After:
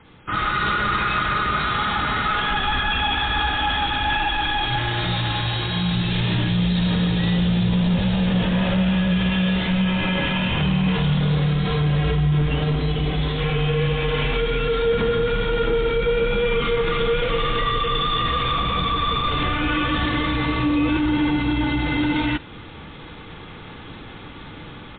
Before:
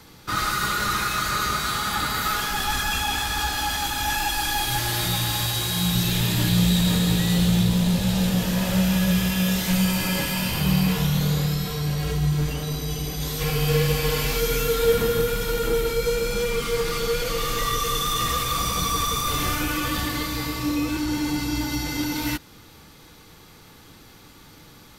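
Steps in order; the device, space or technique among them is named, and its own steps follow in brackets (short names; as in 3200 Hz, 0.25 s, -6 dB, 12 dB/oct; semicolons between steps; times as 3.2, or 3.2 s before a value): low-bitrate web radio (AGC gain up to 11.5 dB; limiter -11.5 dBFS, peak gain reduction 10 dB; MP3 24 kbps 8000 Hz)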